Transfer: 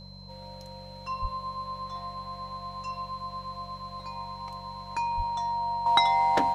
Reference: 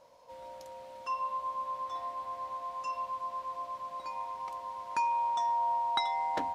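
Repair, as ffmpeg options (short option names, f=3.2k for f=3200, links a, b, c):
-filter_complex "[0:a]bandreject=f=47.5:t=h:w=4,bandreject=f=95:t=h:w=4,bandreject=f=142.5:t=h:w=4,bandreject=f=190:t=h:w=4,bandreject=f=4.1k:w=30,asplit=3[a][b][c];[a]afade=t=out:st=1.21:d=0.02[d];[b]highpass=f=140:w=0.5412,highpass=f=140:w=1.3066,afade=t=in:st=1.21:d=0.02,afade=t=out:st=1.33:d=0.02[e];[c]afade=t=in:st=1.33:d=0.02[f];[d][e][f]amix=inputs=3:normalize=0,asplit=3[g][h][i];[g]afade=t=out:st=5.16:d=0.02[j];[h]highpass=f=140:w=0.5412,highpass=f=140:w=1.3066,afade=t=in:st=5.16:d=0.02,afade=t=out:st=5.28:d=0.02[k];[i]afade=t=in:st=5.28:d=0.02[l];[j][k][l]amix=inputs=3:normalize=0,asetnsamples=n=441:p=0,asendcmd='5.86 volume volume -9dB',volume=0dB"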